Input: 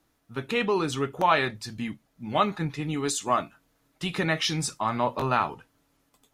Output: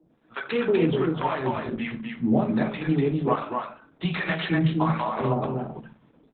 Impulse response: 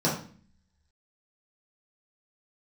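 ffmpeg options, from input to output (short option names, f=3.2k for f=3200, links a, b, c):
-filter_complex "[0:a]acompressor=threshold=-30dB:ratio=12,acrossover=split=650[a][b];[a]aeval=exprs='val(0)*(1-1/2+1/2*cos(2*PI*1.3*n/s))':c=same[c];[b]aeval=exprs='val(0)*(1-1/2-1/2*cos(2*PI*1.3*n/s))':c=same[d];[c][d]amix=inputs=2:normalize=0,highpass=f=190:p=1,aecho=1:1:247:0.631,asplit=2[e][f];[1:a]atrim=start_sample=2205,lowpass=3.6k[g];[f][g]afir=irnorm=-1:irlink=0,volume=-14dB[h];[e][h]amix=inputs=2:normalize=0,acontrast=67,aresample=8000,aresample=44100,volume=3.5dB" -ar 48000 -c:a libopus -b:a 8k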